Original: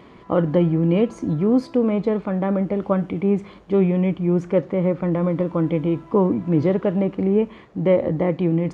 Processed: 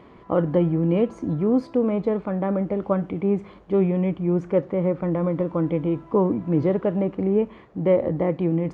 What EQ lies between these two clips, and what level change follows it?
peaking EQ 190 Hz -3 dB 2.1 oct; treble shelf 2.2 kHz -9.5 dB; 0.0 dB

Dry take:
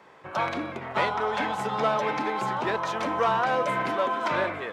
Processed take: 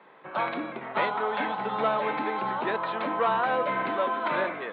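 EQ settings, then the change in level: high-pass 160 Hz 24 dB/octave; elliptic low-pass 4 kHz, stop band 40 dB; distance through air 110 m; 0.0 dB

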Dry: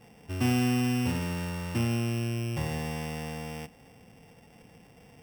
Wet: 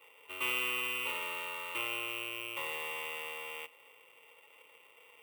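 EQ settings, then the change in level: high-pass 860 Hz 12 dB/octave; peaking EQ 9.4 kHz -6.5 dB 0.72 oct; static phaser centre 1.1 kHz, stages 8; +5.0 dB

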